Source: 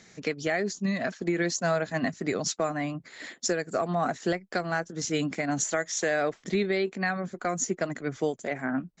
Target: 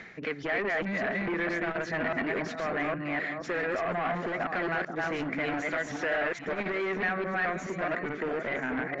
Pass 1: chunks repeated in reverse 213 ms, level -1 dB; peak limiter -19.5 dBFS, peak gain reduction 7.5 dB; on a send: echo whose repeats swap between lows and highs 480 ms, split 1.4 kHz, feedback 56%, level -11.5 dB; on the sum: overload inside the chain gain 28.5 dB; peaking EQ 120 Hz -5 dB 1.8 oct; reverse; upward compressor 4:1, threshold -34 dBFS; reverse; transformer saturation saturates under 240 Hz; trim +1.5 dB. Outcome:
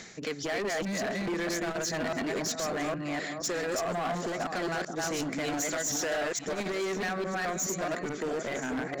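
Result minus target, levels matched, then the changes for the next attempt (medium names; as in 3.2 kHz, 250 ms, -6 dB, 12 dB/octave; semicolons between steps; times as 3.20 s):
2 kHz band -4.0 dB
add after overload inside the chain: resonant low-pass 2.1 kHz, resonance Q 1.9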